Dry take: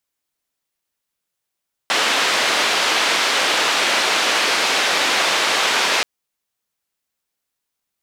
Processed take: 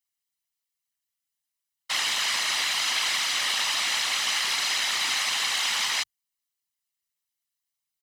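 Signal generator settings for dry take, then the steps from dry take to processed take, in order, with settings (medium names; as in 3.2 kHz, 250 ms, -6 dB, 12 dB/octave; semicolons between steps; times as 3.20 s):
noise band 390–3700 Hz, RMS -18 dBFS 4.13 s
amplifier tone stack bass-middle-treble 5-5-5; comb 1 ms, depth 44%; whisper effect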